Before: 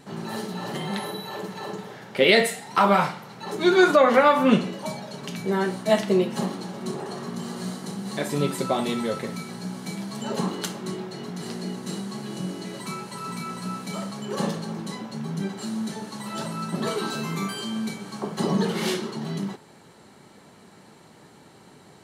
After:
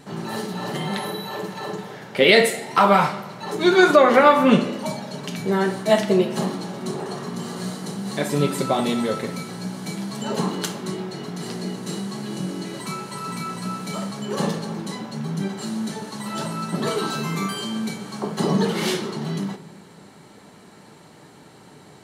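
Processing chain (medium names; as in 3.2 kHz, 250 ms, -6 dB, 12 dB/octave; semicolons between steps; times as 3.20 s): simulated room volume 1100 m³, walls mixed, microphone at 0.42 m; trim +3 dB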